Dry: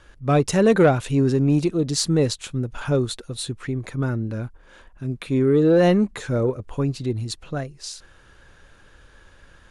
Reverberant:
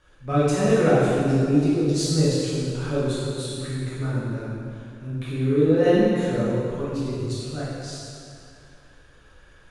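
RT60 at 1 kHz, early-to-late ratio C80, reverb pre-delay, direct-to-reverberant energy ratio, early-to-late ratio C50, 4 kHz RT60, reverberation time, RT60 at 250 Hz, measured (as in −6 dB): 2.3 s, −1.0 dB, 10 ms, −9.0 dB, −3.0 dB, 2.0 s, 2.4 s, 2.5 s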